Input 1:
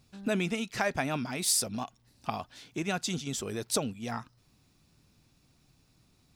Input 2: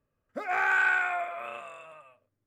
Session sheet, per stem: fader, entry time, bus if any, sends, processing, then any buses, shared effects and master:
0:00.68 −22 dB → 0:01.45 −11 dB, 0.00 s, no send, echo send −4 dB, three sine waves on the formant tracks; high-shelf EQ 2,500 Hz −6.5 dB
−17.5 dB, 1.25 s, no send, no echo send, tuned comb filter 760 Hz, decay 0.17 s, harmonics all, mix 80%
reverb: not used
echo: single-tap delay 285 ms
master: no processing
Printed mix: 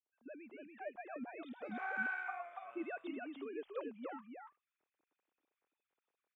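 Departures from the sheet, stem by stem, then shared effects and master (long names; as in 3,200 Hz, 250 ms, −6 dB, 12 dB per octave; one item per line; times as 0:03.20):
stem 2 −17.5 dB → −7.0 dB
master: extra bass and treble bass −4 dB, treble −13 dB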